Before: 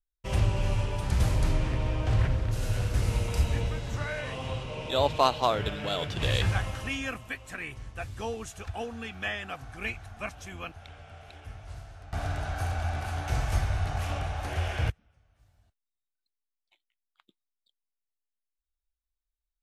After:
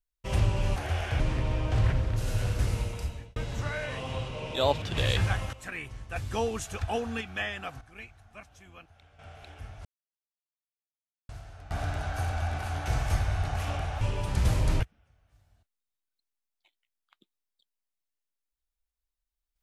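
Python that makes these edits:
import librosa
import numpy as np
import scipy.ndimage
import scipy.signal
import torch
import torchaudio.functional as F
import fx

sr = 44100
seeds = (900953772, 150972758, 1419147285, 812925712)

y = fx.edit(x, sr, fx.swap(start_s=0.76, length_s=0.79, other_s=14.43, other_length_s=0.44),
    fx.fade_out_span(start_s=2.93, length_s=0.78),
    fx.cut(start_s=5.17, length_s=0.9),
    fx.cut(start_s=6.78, length_s=0.61),
    fx.clip_gain(start_s=8.02, length_s=1.05, db=5.0),
    fx.clip_gain(start_s=9.67, length_s=1.38, db=-11.5),
    fx.insert_silence(at_s=11.71, length_s=1.44), tone=tone)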